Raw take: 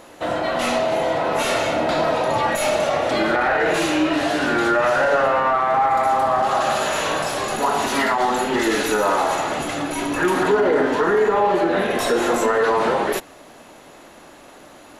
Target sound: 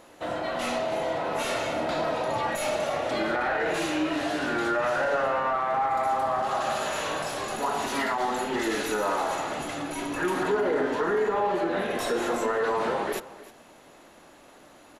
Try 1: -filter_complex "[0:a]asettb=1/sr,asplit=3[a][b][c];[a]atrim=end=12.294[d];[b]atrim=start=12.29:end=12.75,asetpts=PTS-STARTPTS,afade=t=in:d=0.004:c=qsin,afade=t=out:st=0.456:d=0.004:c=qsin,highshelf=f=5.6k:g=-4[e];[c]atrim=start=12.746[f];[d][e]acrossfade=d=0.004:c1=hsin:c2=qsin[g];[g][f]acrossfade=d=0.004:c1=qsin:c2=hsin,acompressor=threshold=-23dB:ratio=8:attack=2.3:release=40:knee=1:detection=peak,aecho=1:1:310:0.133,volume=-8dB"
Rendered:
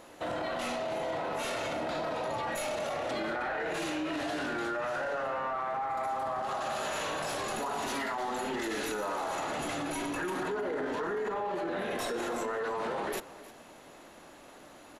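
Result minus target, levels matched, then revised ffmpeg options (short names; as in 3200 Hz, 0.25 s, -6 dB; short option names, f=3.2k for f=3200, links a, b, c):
compressor: peak gain reduction +10.5 dB
-filter_complex "[0:a]asettb=1/sr,asplit=3[a][b][c];[a]atrim=end=12.294[d];[b]atrim=start=12.29:end=12.75,asetpts=PTS-STARTPTS,afade=t=in:d=0.004:c=qsin,afade=t=out:st=0.456:d=0.004:c=qsin,highshelf=f=5.6k:g=-4[e];[c]atrim=start=12.746[f];[d][e]acrossfade=d=0.004:c1=hsin:c2=qsin[g];[g][f]acrossfade=d=0.004:c1=qsin:c2=hsin,aecho=1:1:310:0.133,volume=-8dB"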